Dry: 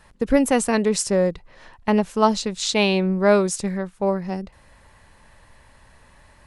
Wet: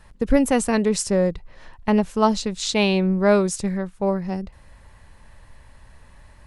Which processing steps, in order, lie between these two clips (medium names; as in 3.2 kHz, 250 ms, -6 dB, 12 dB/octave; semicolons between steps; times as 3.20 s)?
bass shelf 130 Hz +9 dB; trim -1.5 dB